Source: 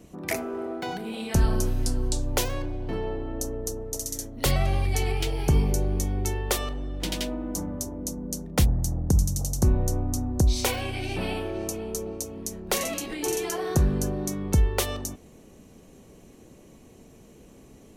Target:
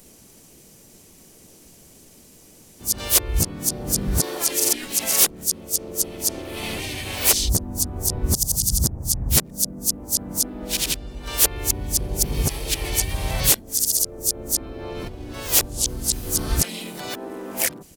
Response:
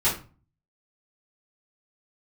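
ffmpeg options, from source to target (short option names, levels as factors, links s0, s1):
-filter_complex "[0:a]areverse,asplit=4[s0][s1][s2][s3];[s1]asetrate=35002,aresample=44100,atempo=1.25992,volume=0.794[s4];[s2]asetrate=52444,aresample=44100,atempo=0.840896,volume=0.355[s5];[s3]asetrate=58866,aresample=44100,atempo=0.749154,volume=0.398[s6];[s0][s4][s5][s6]amix=inputs=4:normalize=0,crystalizer=i=5:c=0,volume=0.562"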